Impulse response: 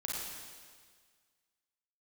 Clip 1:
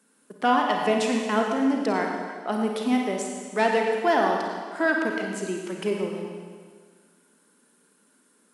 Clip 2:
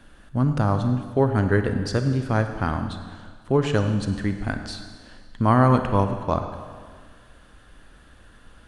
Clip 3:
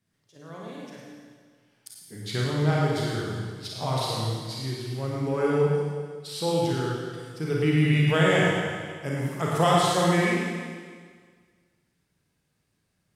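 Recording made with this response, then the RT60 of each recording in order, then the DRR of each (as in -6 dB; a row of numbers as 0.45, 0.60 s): 3; 1.7, 1.7, 1.7 s; 1.0, 7.0, -4.5 dB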